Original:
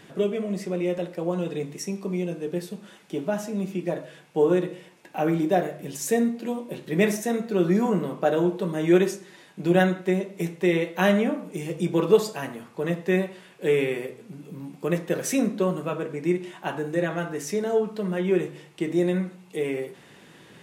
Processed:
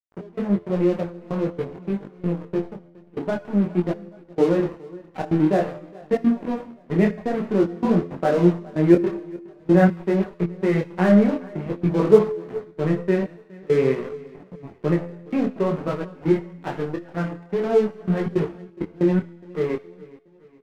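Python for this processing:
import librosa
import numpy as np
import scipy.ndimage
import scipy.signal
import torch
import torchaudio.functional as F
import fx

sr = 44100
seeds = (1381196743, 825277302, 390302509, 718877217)

p1 = scipy.signal.sosfilt(scipy.signal.butter(4, 2000.0, 'lowpass', fs=sr, output='sos'), x)
p2 = fx.low_shelf(p1, sr, hz=340.0, db=8.0)
p3 = fx.level_steps(p2, sr, step_db=12)
p4 = p2 + (p3 * 10.0 ** (-2.5 / 20.0))
p5 = np.sign(p4) * np.maximum(np.abs(p4) - 10.0 ** (-29.5 / 20.0), 0.0)
p6 = fx.step_gate(p5, sr, bpm=161, pattern='xx..xx.xxx', floor_db=-24.0, edge_ms=4.5)
p7 = fx.comb_fb(p6, sr, f0_hz=86.0, decay_s=0.96, harmonics='all', damping=0.0, mix_pct=50)
p8 = p7 + fx.echo_feedback(p7, sr, ms=416, feedback_pct=48, wet_db=-22.0, dry=0)
p9 = fx.detune_double(p8, sr, cents=17)
y = p9 * 10.0 ** (7.5 / 20.0)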